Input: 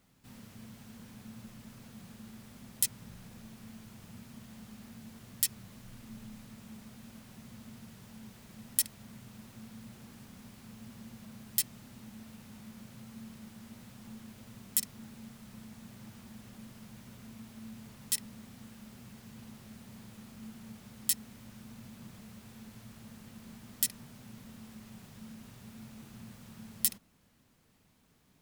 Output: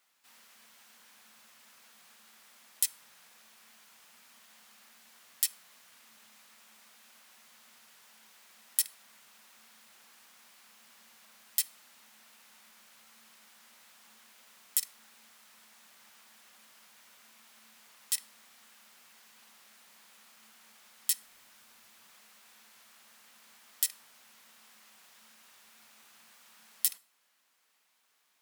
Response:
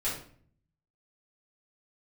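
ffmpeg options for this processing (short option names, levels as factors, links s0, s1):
-filter_complex "[0:a]highpass=1000,asettb=1/sr,asplit=3[s0][s1][s2];[s0]atrim=end=21.194[s3];[s1]atrim=start=21.19:end=22.06,asetpts=PTS-STARTPTS,afade=t=in:d=0.004:c=qsin,afade=t=out:st=0.866:d=0.004:c=qsin,aeval=exprs='(mod(355*val(0)+1,2)-1)/355':c=same[s4];[s2]atrim=start=22.056[s5];[s3][s4]acrossfade=d=0.004:c1=hsin:c2=qsin[s6];[s6][s5]acrossfade=d=0.004:c1=qsin:c2=hsin,asplit=2[s7][s8];[1:a]atrim=start_sample=2205,asetrate=37485,aresample=44100[s9];[s8][s9]afir=irnorm=-1:irlink=0,volume=0.0562[s10];[s7][s10]amix=inputs=2:normalize=0"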